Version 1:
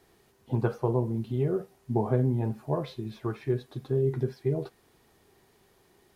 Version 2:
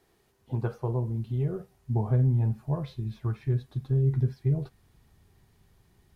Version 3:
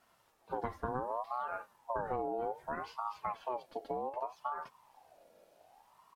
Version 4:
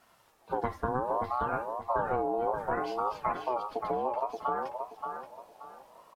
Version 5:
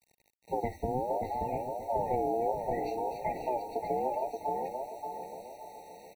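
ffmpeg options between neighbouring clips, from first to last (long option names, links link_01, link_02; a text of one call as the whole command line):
ffmpeg -i in.wav -af "asubboost=boost=8:cutoff=140,volume=-4.5dB" out.wav
ffmpeg -i in.wav -af "acompressor=threshold=-28dB:ratio=4,aecho=1:1:3.6:0.53,aeval=exprs='val(0)*sin(2*PI*800*n/s+800*0.3/0.65*sin(2*PI*0.65*n/s))':channel_layout=same" out.wav
ffmpeg -i in.wav -filter_complex "[0:a]asplit=2[link_01][link_02];[link_02]adelay=578,lowpass=frequency=2100:poles=1,volume=-4.5dB,asplit=2[link_03][link_04];[link_04]adelay=578,lowpass=frequency=2100:poles=1,volume=0.31,asplit=2[link_05][link_06];[link_06]adelay=578,lowpass=frequency=2100:poles=1,volume=0.31,asplit=2[link_07][link_08];[link_08]adelay=578,lowpass=frequency=2100:poles=1,volume=0.31[link_09];[link_01][link_03][link_05][link_07][link_09]amix=inputs=5:normalize=0,volume=6dB" out.wav
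ffmpeg -i in.wav -filter_complex "[0:a]asplit=2[link_01][link_02];[link_02]adelay=711,lowpass=frequency=1300:poles=1,volume=-11dB,asplit=2[link_03][link_04];[link_04]adelay=711,lowpass=frequency=1300:poles=1,volume=0.47,asplit=2[link_05][link_06];[link_06]adelay=711,lowpass=frequency=1300:poles=1,volume=0.47,asplit=2[link_07][link_08];[link_08]adelay=711,lowpass=frequency=1300:poles=1,volume=0.47,asplit=2[link_09][link_10];[link_10]adelay=711,lowpass=frequency=1300:poles=1,volume=0.47[link_11];[link_01][link_03][link_05][link_07][link_09][link_11]amix=inputs=6:normalize=0,acrusher=bits=8:mix=0:aa=0.000001,afftfilt=real='re*eq(mod(floor(b*sr/1024/920),2),0)':imag='im*eq(mod(floor(b*sr/1024/920),2),0)':win_size=1024:overlap=0.75" out.wav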